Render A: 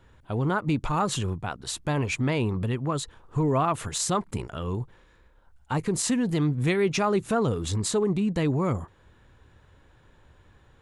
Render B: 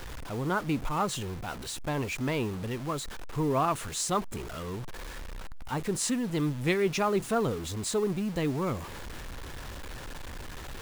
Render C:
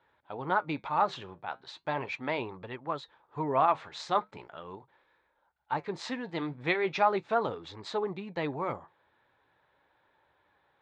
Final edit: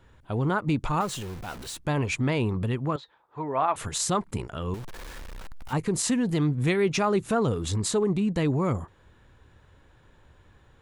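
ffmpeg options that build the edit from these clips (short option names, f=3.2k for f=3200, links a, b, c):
-filter_complex "[1:a]asplit=2[a][b];[0:a]asplit=4[c][d][e][f];[c]atrim=end=1.012[g];[a]atrim=start=1.008:end=1.772[h];[d]atrim=start=1.768:end=2.962[i];[2:a]atrim=start=2.958:end=3.762[j];[e]atrim=start=3.758:end=4.742[k];[b]atrim=start=4.738:end=5.732[l];[f]atrim=start=5.728[m];[g][h]acrossfade=d=0.004:c1=hsin:c2=hsin[n];[n][i]acrossfade=d=0.004:c1=hsin:c2=hsin[o];[o][j]acrossfade=d=0.004:c1=hsin:c2=hsin[p];[p][k]acrossfade=d=0.004:c1=hsin:c2=hsin[q];[q][l]acrossfade=d=0.004:c1=hsin:c2=hsin[r];[r][m]acrossfade=d=0.004:c1=hsin:c2=hsin"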